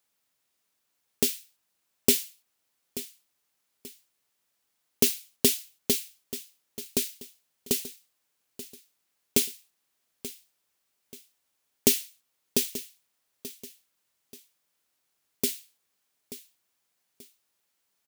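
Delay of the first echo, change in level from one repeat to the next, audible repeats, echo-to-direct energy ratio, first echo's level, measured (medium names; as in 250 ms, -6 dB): 883 ms, -9.0 dB, 2, -14.5 dB, -15.0 dB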